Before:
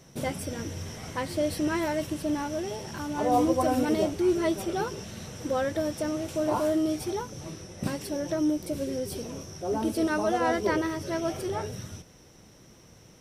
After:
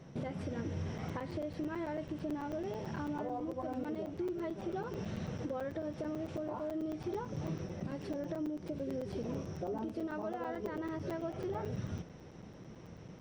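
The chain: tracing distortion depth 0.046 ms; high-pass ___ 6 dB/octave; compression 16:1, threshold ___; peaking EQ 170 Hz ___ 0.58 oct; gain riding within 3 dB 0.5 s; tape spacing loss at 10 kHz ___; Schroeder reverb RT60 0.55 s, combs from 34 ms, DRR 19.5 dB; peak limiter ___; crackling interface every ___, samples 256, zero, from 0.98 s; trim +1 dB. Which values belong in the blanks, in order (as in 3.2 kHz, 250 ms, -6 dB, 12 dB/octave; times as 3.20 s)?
62 Hz, -34 dBFS, +3.5 dB, 27 dB, -30.5 dBFS, 0.11 s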